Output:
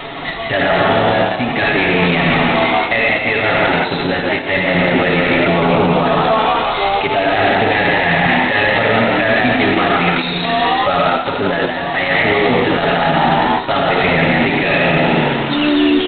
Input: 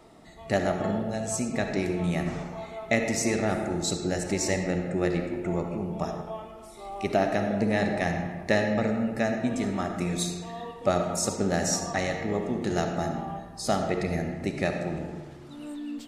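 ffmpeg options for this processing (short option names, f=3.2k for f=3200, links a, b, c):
-filter_complex "[0:a]tiltshelf=f=900:g=-7.5,aecho=1:1:7.2:0.79,areverse,acompressor=threshold=-31dB:ratio=16,areverse,asplit=6[a][b][c][d][e][f];[b]adelay=175,afreqshift=76,volume=-4.5dB[g];[c]adelay=350,afreqshift=152,volume=-13.1dB[h];[d]adelay=525,afreqshift=228,volume=-21.8dB[i];[e]adelay=700,afreqshift=304,volume=-30.4dB[j];[f]adelay=875,afreqshift=380,volume=-39dB[k];[a][g][h][i][j][k]amix=inputs=6:normalize=0,alimiter=level_in=29.5dB:limit=-1dB:release=50:level=0:latency=1,volume=-3.5dB" -ar 8000 -c:a adpcm_g726 -b:a 16k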